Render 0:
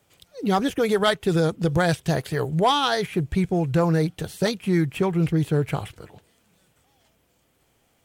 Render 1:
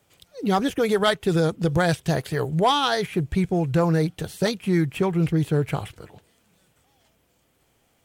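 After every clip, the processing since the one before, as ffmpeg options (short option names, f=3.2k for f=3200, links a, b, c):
-af anull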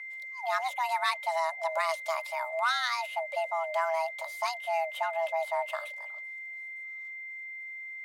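-af "aeval=exprs='val(0)+0.0316*sin(2*PI*1600*n/s)':c=same,afreqshift=490,highpass=530,volume=-8.5dB"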